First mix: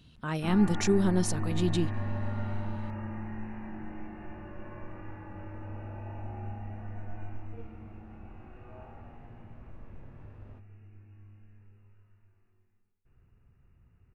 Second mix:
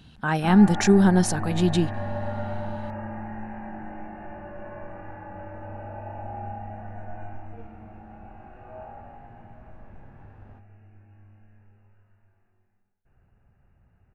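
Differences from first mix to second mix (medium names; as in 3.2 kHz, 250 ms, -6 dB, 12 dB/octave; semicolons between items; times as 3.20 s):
speech +5.5 dB; first sound: add peaking EQ 600 Hz +10.5 dB 0.36 oct; master: add graphic EQ with 31 bands 200 Hz +4 dB, 800 Hz +11 dB, 1.6 kHz +8 dB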